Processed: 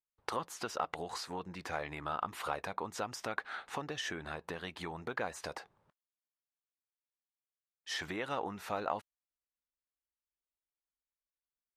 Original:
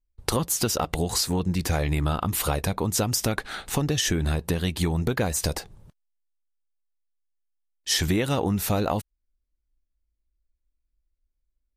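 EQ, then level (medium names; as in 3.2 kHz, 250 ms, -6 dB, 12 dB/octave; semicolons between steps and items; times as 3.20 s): band-pass filter 1.2 kHz, Q 1; -5.0 dB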